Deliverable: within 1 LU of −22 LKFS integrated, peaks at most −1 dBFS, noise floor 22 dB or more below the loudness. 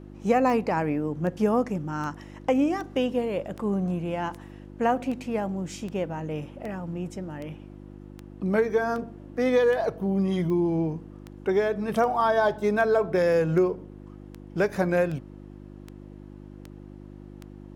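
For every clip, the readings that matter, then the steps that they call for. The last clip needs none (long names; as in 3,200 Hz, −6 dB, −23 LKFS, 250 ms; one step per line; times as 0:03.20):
number of clicks 23; mains hum 50 Hz; hum harmonics up to 350 Hz; level of the hum −43 dBFS; integrated loudness −26.5 LKFS; sample peak −10.0 dBFS; target loudness −22.0 LKFS
→ click removal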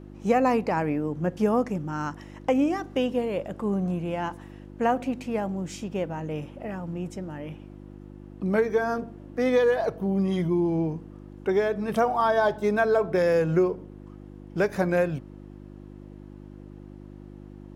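number of clicks 0; mains hum 50 Hz; hum harmonics up to 350 Hz; level of the hum −43 dBFS
→ hum removal 50 Hz, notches 7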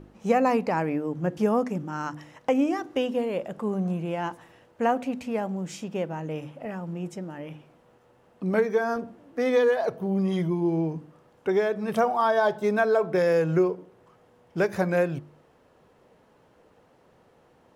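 mains hum none found; integrated loudness −26.5 LKFS; sample peak −9.5 dBFS; target loudness −22.0 LKFS
→ level +4.5 dB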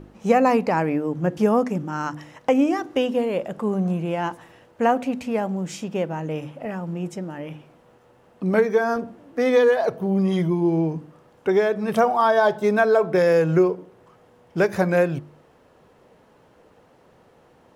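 integrated loudness −22.0 LKFS; sample peak −5.0 dBFS; background noise floor −56 dBFS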